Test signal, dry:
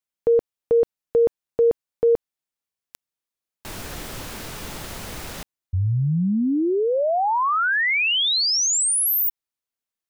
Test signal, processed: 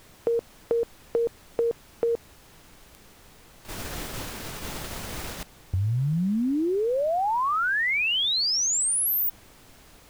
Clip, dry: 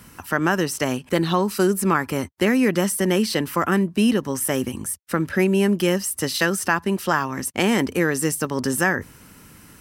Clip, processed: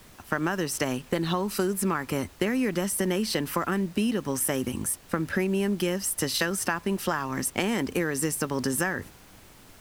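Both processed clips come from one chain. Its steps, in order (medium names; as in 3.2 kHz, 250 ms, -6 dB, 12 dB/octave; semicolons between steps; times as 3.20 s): gate -34 dBFS, range -12 dB; compression, threshold -23 dBFS; added noise pink -52 dBFS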